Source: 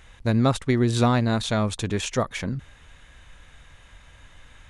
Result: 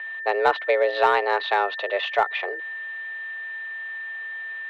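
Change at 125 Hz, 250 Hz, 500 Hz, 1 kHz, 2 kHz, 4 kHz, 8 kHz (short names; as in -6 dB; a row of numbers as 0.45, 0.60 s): under -35 dB, -22.0 dB, +4.5 dB, +8.0 dB, +11.0 dB, 0.0 dB, under -20 dB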